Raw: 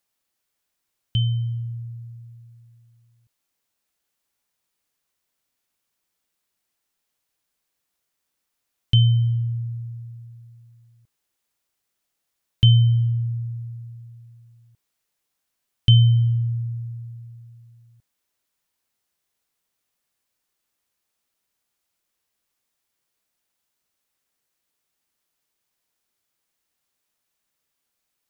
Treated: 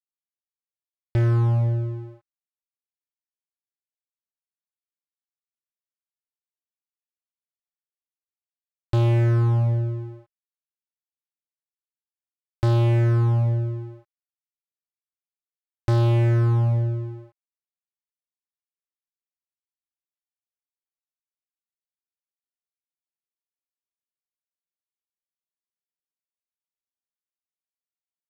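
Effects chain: boxcar filter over 15 samples; fuzz box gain 29 dB, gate -38 dBFS; trim -4 dB

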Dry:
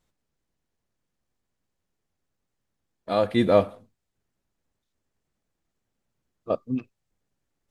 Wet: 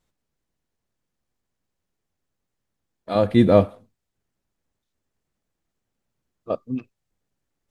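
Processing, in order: 3.15–3.66 s: bass shelf 330 Hz +10.5 dB

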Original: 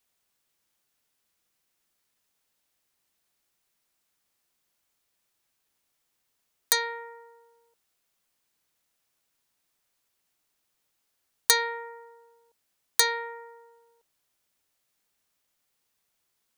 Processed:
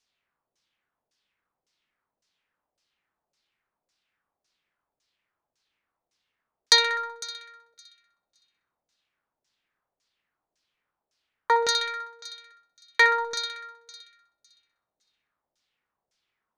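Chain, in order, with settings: waveshaping leveller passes 1; thinning echo 63 ms, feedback 83%, high-pass 700 Hz, level -8 dB; LFO low-pass saw down 1.8 Hz 560–6200 Hz

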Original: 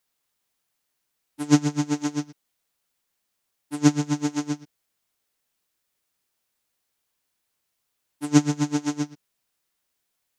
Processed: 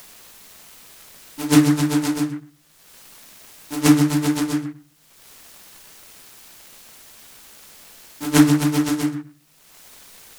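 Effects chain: in parallel at +2.5 dB: upward compressor, threshold -26 dBFS; on the sum: treble shelf 5.1 kHz +9.5 dB; simulated room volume 260 m³, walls furnished, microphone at 1.5 m; delay time shaken by noise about 1.3 kHz, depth 0.063 ms; trim -6 dB

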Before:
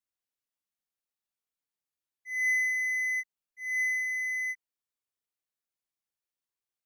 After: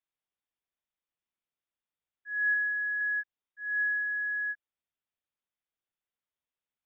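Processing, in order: 2.54–3.01 s: static phaser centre 2.7 kHz, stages 4; frequency inversion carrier 3.7 kHz

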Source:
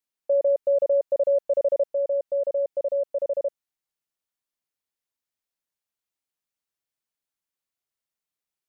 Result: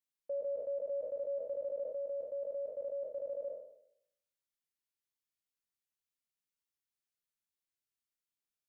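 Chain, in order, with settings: spectral sustain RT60 0.74 s; peaking EQ 710 Hz -9 dB 1.3 oct; peak limiter -25 dBFS, peak gain reduction 3.5 dB; trim -7.5 dB

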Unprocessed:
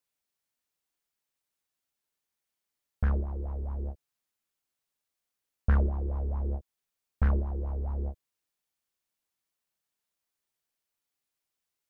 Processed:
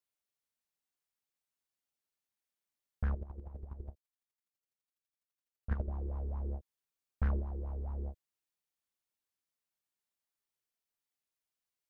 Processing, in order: 3.13–5.88 s: square tremolo 12 Hz, depth 65%, duty 20%; trim -6.5 dB

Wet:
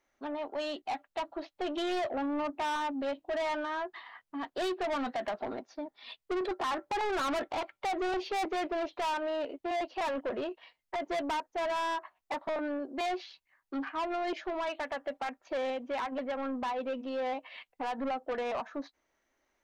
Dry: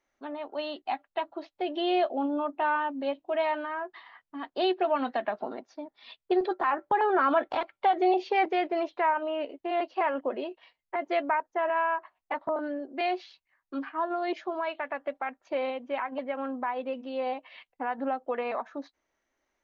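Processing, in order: saturation -31.5 dBFS, distortion -7 dB; trim +2 dB

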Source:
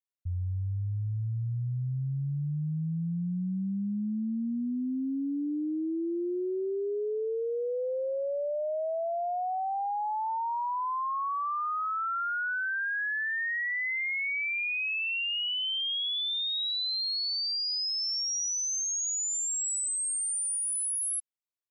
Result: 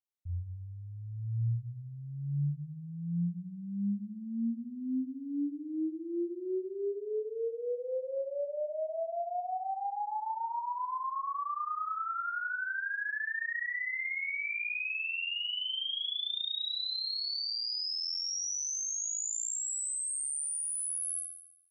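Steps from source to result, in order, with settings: flutter echo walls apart 6 m, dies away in 0.8 s; trim -7.5 dB

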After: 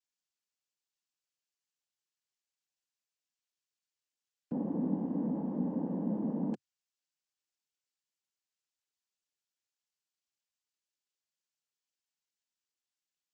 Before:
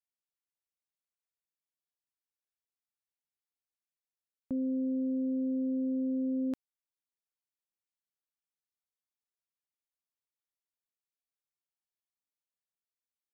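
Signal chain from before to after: noise-vocoded speech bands 8; trim -2 dB

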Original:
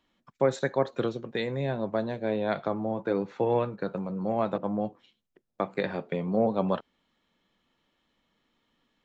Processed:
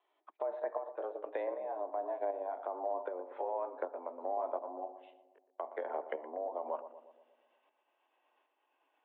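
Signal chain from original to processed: pitch bend over the whole clip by -3.5 st starting unshifted; low-pass that closes with the level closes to 1.2 kHz, closed at -28 dBFS; high-order bell 720 Hz +9 dB 1.1 oct; peak limiter -17 dBFS, peak gain reduction 11.5 dB; compression 2.5:1, threshold -32 dBFS, peak gain reduction 7 dB; tremolo saw up 1.3 Hz, depth 55%; filtered feedback delay 119 ms, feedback 61%, low-pass 1 kHz, level -11 dB; mistuned SSB +83 Hz 280–3300 Hz; trim -1 dB

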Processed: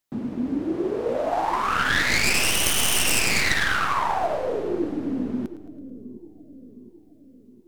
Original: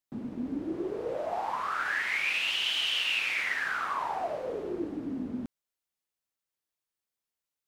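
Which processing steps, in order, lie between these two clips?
tracing distortion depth 0.3 ms; on a send: two-band feedback delay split 410 Hz, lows 714 ms, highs 109 ms, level -12.5 dB; on the sum: trim +8 dB

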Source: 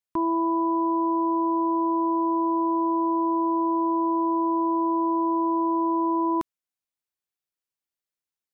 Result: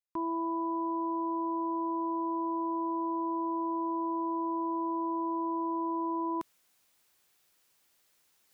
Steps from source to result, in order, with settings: bass shelf 190 Hz -5 dB; reverse; upward compressor, threshold -38 dBFS; reverse; trim -8 dB

